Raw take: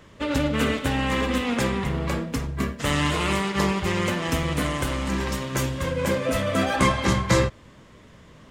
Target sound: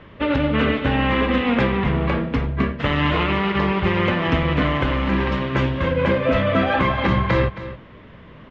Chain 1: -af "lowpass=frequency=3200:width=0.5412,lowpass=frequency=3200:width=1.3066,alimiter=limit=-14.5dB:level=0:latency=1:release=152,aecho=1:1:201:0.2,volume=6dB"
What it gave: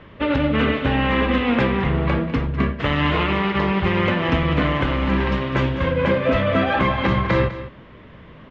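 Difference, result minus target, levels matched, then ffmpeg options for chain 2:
echo 68 ms early
-af "lowpass=frequency=3200:width=0.5412,lowpass=frequency=3200:width=1.3066,alimiter=limit=-14.5dB:level=0:latency=1:release=152,aecho=1:1:269:0.2,volume=6dB"

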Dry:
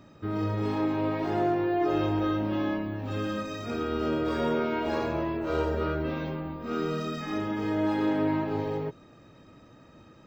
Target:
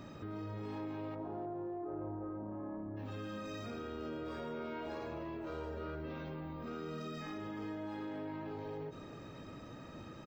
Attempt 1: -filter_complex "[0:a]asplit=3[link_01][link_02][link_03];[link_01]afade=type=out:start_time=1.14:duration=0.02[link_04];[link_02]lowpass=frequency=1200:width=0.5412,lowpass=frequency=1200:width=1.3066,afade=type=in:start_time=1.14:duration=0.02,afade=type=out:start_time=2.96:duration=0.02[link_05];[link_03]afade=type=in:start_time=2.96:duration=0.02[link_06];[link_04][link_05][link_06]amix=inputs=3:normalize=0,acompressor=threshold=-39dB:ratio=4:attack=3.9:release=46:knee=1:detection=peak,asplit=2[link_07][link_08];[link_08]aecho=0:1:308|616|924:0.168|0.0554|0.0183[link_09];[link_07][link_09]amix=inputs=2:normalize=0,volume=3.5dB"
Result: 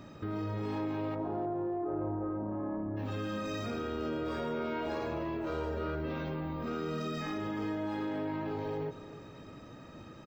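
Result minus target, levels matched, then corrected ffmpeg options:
downward compressor: peak gain reduction −7 dB
-filter_complex "[0:a]asplit=3[link_01][link_02][link_03];[link_01]afade=type=out:start_time=1.14:duration=0.02[link_04];[link_02]lowpass=frequency=1200:width=0.5412,lowpass=frequency=1200:width=1.3066,afade=type=in:start_time=1.14:duration=0.02,afade=type=out:start_time=2.96:duration=0.02[link_05];[link_03]afade=type=in:start_time=2.96:duration=0.02[link_06];[link_04][link_05][link_06]amix=inputs=3:normalize=0,acompressor=threshold=-48.5dB:ratio=4:attack=3.9:release=46:knee=1:detection=peak,asplit=2[link_07][link_08];[link_08]aecho=0:1:308|616|924:0.168|0.0554|0.0183[link_09];[link_07][link_09]amix=inputs=2:normalize=0,volume=3.5dB"

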